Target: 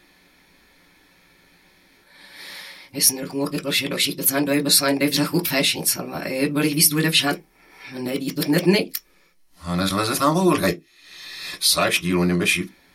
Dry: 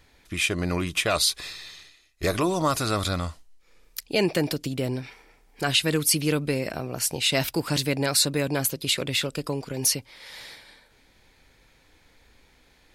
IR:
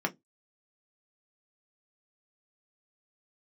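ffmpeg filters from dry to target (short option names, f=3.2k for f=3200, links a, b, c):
-filter_complex "[0:a]areverse[a];[1:a]atrim=start_sample=2205[b];[a][b]afir=irnorm=-1:irlink=0,crystalizer=i=3:c=0,volume=-4.5dB"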